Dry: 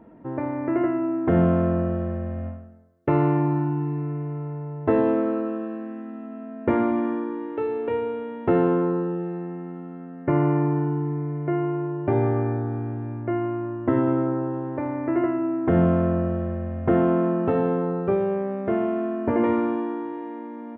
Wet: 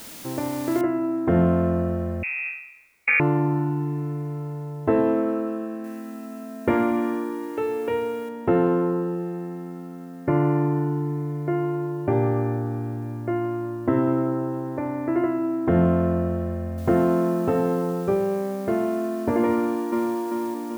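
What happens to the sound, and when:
0:00.81: noise floor change −41 dB −65 dB
0:02.23–0:03.20: voice inversion scrambler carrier 2,600 Hz
0:05.84–0:08.29: high-shelf EQ 2,600 Hz +11 dB
0:16.78: noise floor change −69 dB −51 dB
0:19.53–0:20.15: delay throw 390 ms, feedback 50%, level −2 dB

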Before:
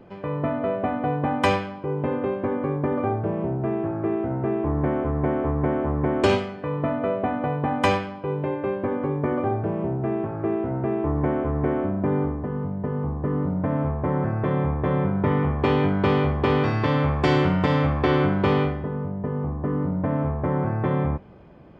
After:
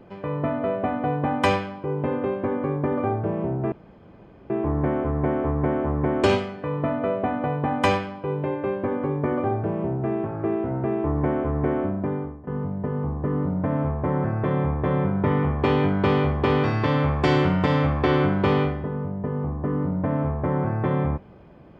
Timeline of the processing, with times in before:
0:03.72–0:04.50: fill with room tone
0:11.85–0:12.47: fade out, to −17.5 dB

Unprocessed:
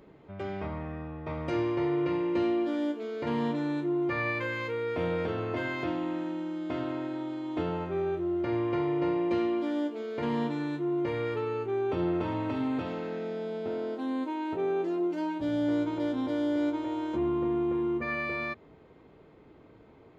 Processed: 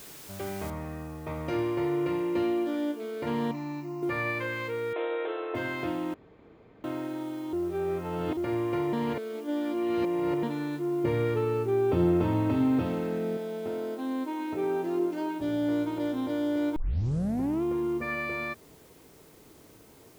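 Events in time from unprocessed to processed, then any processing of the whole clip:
0:00.70: noise floor change −47 dB −60 dB
0:03.51–0:04.03: phaser with its sweep stopped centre 2,300 Hz, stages 8
0:04.93–0:05.55: linear-phase brick-wall band-pass 310–4,100 Hz
0:06.14–0:06.84: fill with room tone
0:07.53–0:08.37: reverse
0:08.93–0:10.43: reverse
0:11.04–0:13.37: low-shelf EQ 350 Hz +9.5 dB
0:14.21–0:14.95: thrown reverb, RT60 2.3 s, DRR 5.5 dB
0:16.76: tape start 0.87 s

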